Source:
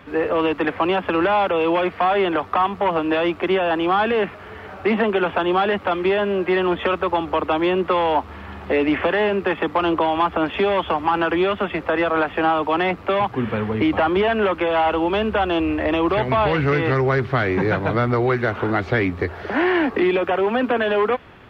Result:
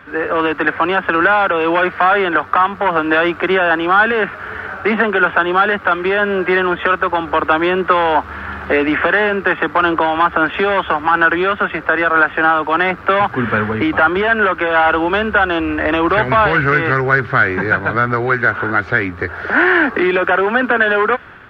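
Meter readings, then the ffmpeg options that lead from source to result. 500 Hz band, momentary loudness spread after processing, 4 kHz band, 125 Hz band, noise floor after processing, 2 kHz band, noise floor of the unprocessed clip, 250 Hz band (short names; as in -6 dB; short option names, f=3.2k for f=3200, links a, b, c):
+2.5 dB, 4 LU, +3.0 dB, +1.0 dB, -32 dBFS, +11.5 dB, -38 dBFS, +2.0 dB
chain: -af "equalizer=f=1.5k:t=o:w=0.61:g=13.5,dynaudnorm=f=130:g=5:m=11.5dB,volume=-1dB"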